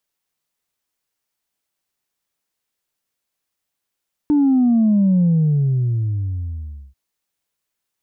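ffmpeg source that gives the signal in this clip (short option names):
-f lavfi -i "aevalsrc='0.251*clip((2.64-t)/1.72,0,1)*tanh(1*sin(2*PI*300*2.64/log(65/300)*(exp(log(65/300)*t/2.64)-1)))/tanh(1)':d=2.64:s=44100"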